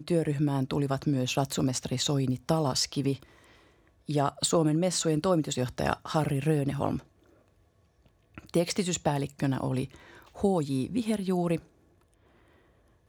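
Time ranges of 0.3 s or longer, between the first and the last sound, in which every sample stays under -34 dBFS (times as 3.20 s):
3.15–4.09 s
6.99–8.38 s
9.85–10.40 s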